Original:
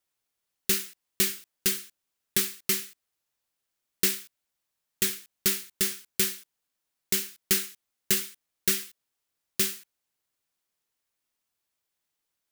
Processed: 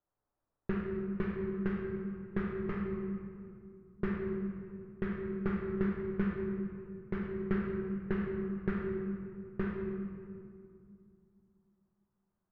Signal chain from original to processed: LPF 1300 Hz 24 dB/oct; low shelf 110 Hz +6 dB; reverb RT60 2.4 s, pre-delay 7 ms, DRR -2 dB

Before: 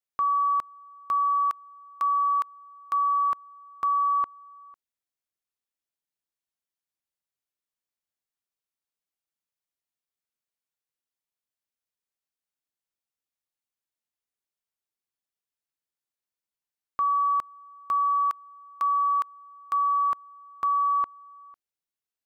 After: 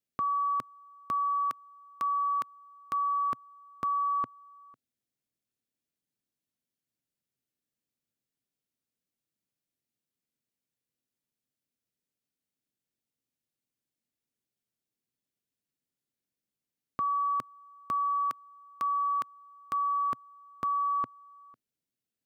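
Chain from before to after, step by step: graphic EQ 125/250/500/1000 Hz +10/+11/+3/-7 dB

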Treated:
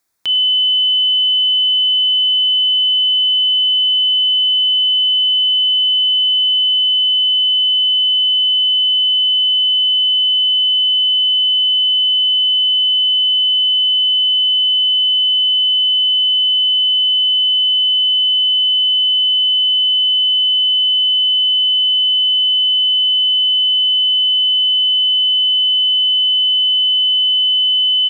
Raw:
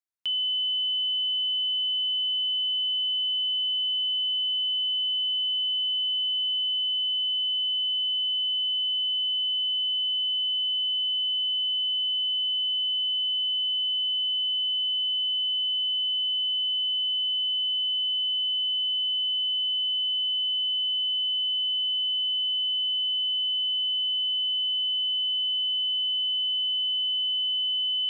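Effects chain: bell 2900 Hz -13 dB 0.28 oct; notches 60/120 Hz; speakerphone echo 0.1 s, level -18 dB; maximiser +31 dB; gain -7.5 dB

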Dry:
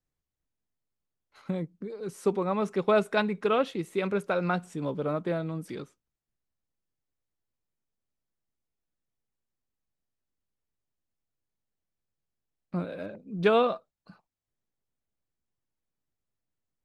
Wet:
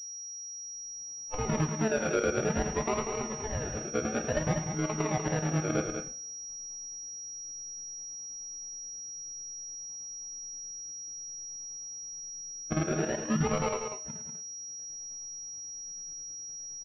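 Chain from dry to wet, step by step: frequency quantiser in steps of 6 st; recorder AGC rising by 28 dB/s; low-pass opened by the level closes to 670 Hz, open at -21 dBFS; limiter -16 dBFS, peak gain reduction 7 dB; chopper 9.4 Hz, depth 65%, duty 65%; 3.02–3.88 resonator 69 Hz, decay 0.18 s, harmonics all, mix 90%; decimation with a swept rate 36×, swing 60% 0.57 Hz; loudspeakers at several distances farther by 37 m -12 dB, 66 m -7 dB; two-slope reverb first 0.45 s, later 1.6 s, from -22 dB, DRR 9 dB; pulse-width modulation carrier 5700 Hz; gain -4 dB

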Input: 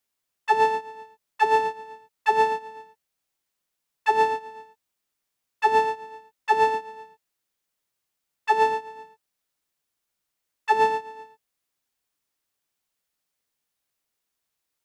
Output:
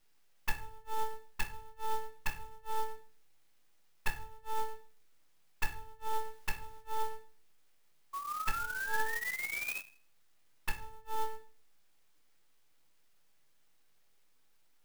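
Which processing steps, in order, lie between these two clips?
half-wave rectifier; flipped gate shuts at -21 dBFS, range -39 dB; in parallel at +2 dB: compressor, threshold -52 dBFS, peak gain reduction 18.5 dB; 6.11–6.81 on the sum: requantised 12-bit, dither triangular; 8.13–9.8 painted sound rise 1100–2600 Hz -42 dBFS; reverb RT60 0.50 s, pre-delay 6 ms, DRR 0.5 dB; clock jitter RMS 0.031 ms; gain +1.5 dB

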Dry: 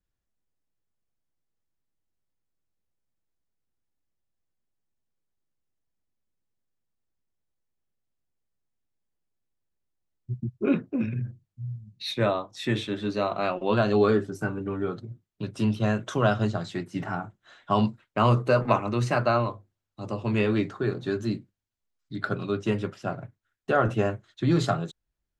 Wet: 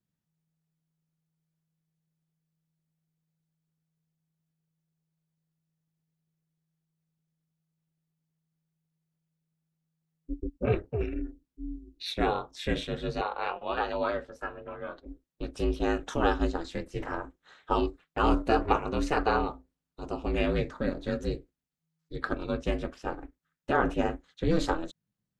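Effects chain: ring modulator 160 Hz; 13.21–15.06 three-band isolator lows -15 dB, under 530 Hz, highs -14 dB, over 4300 Hz

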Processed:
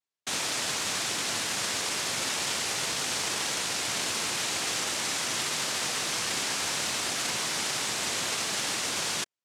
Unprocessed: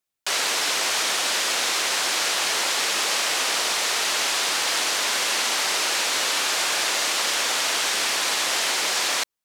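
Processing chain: noise vocoder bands 1; gain -6.5 dB

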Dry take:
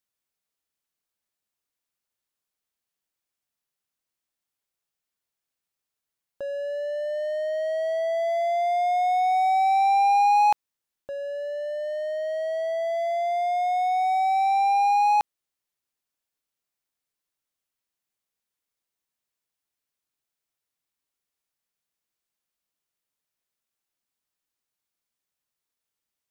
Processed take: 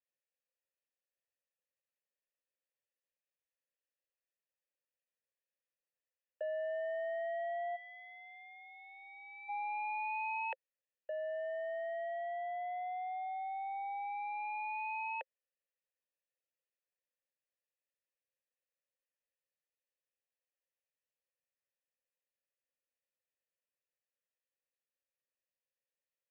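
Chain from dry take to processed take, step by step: mistuned SSB +63 Hz 340–3100 Hz; spectral gain 7.76–9.49, 590–1800 Hz -21 dB; vowel filter e; gain +3 dB

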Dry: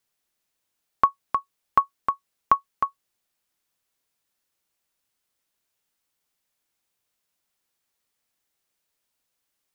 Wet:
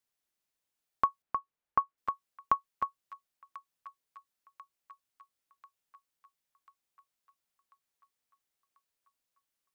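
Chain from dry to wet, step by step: 1.22–1.98 LPF 2200 Hz 12 dB/oct; on a send: thin delay 1.041 s, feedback 56%, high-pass 1700 Hz, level -12.5 dB; on the sum: gain -8 dB

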